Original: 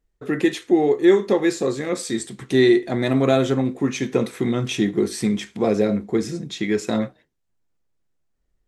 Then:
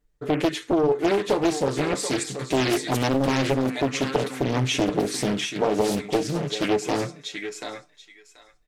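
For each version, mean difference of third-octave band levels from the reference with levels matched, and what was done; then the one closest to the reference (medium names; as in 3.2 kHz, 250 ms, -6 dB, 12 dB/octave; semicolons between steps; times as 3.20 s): 8.0 dB: comb 6.8 ms, depth 79%; compression 6:1, threshold -17 dBFS, peak gain reduction 8 dB; on a send: thinning echo 733 ms, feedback 19%, high-pass 1 kHz, level -3.5 dB; on the sum: loudspeaker Doppler distortion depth 0.98 ms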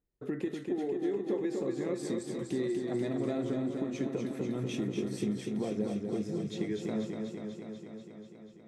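6.0 dB: high-pass 150 Hz 6 dB/octave; tilt shelf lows +6 dB, about 650 Hz; compression, threshold -23 dBFS, peak gain reduction 15 dB; modulated delay 244 ms, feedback 73%, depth 51 cents, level -5 dB; trim -8.5 dB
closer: second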